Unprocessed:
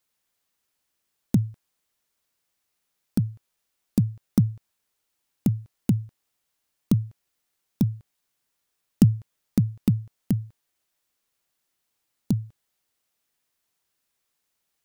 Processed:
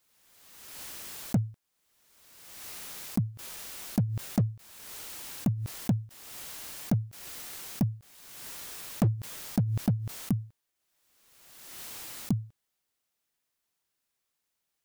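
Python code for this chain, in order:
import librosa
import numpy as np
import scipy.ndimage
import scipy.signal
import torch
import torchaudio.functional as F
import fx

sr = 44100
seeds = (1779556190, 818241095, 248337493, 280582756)

y = np.clip(10.0 ** (15.5 / 20.0) * x, -1.0, 1.0) / 10.0 ** (15.5 / 20.0)
y = fx.pre_swell(y, sr, db_per_s=38.0)
y = y * 10.0 ** (-4.5 / 20.0)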